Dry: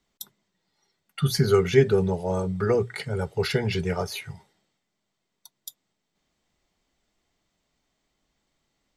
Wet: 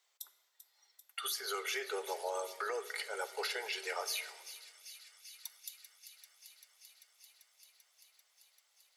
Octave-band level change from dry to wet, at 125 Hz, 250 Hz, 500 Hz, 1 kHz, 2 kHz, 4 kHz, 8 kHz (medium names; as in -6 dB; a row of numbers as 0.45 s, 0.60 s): under -40 dB, -29.5 dB, -17.5 dB, -6.5 dB, -6.0 dB, -5.5 dB, -2.5 dB